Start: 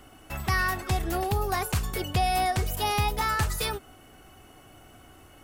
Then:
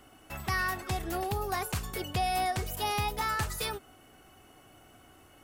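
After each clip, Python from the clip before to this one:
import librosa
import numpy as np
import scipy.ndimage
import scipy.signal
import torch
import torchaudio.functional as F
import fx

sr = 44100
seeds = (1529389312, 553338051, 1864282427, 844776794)

y = fx.low_shelf(x, sr, hz=91.0, db=-6.5)
y = F.gain(torch.from_numpy(y), -4.0).numpy()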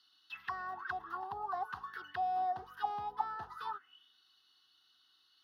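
y = fx.auto_wah(x, sr, base_hz=690.0, top_hz=4400.0, q=9.3, full_db=-27.5, direction='down')
y = fx.fixed_phaser(y, sr, hz=2300.0, stages=6)
y = F.gain(torch.from_numpy(y), 12.0).numpy()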